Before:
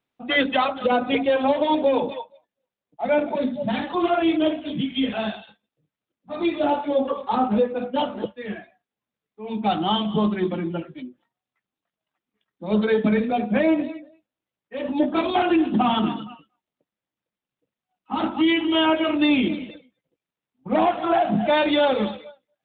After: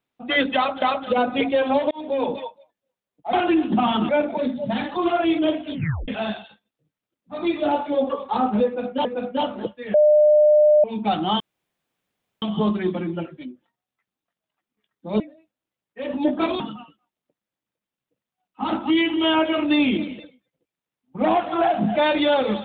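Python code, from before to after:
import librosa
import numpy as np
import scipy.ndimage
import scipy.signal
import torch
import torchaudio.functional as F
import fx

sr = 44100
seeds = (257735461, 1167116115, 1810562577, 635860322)

y = fx.edit(x, sr, fx.repeat(start_s=0.56, length_s=0.26, count=2),
    fx.fade_in_span(start_s=1.65, length_s=0.39),
    fx.tape_stop(start_s=4.72, length_s=0.34),
    fx.repeat(start_s=7.64, length_s=0.39, count=2),
    fx.bleep(start_s=8.53, length_s=0.9, hz=602.0, db=-11.0),
    fx.insert_room_tone(at_s=9.99, length_s=1.02),
    fx.cut(start_s=12.77, length_s=1.18),
    fx.move(start_s=15.35, length_s=0.76, to_s=3.07), tone=tone)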